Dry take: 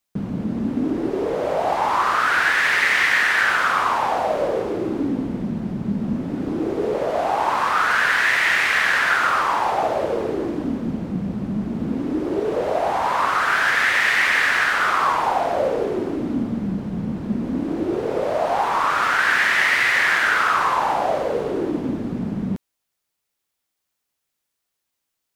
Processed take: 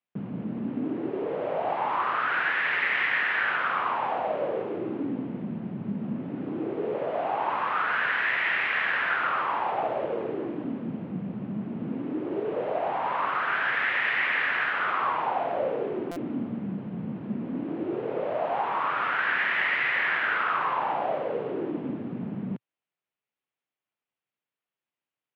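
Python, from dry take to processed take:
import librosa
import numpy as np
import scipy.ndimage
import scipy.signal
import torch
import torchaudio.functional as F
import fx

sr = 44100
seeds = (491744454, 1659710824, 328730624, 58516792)

y = scipy.signal.sosfilt(scipy.signal.cheby1(3, 1.0, [120.0, 2900.0], 'bandpass', fs=sr, output='sos'), x)
y = fx.buffer_glitch(y, sr, at_s=(16.11,), block=256, repeats=8)
y = y * 10.0 ** (-7.0 / 20.0)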